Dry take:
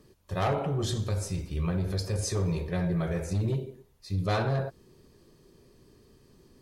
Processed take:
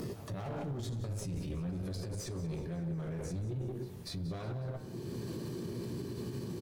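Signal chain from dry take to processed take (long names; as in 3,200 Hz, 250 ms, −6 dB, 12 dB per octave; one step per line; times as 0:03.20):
source passing by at 0:01.58, 16 m/s, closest 10 metres
high-pass filter 98 Hz 24 dB per octave
in parallel at +1 dB: upward compression, threshold −33 dBFS
on the sum: hum removal 152.2 Hz, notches 34
reversed playback
downward compressor 6 to 1, threshold −40 dBFS, peak gain reduction 19 dB
reversed playback
asymmetric clip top −45.5 dBFS
low-shelf EQ 370 Hz +10 dB
double-tracking delay 17 ms −11 dB
backwards echo 244 ms −22.5 dB
brickwall limiter −39 dBFS, peak gain reduction 15.5 dB
feedback echo at a low word length 183 ms, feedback 55%, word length 12 bits, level −15 dB
level +7 dB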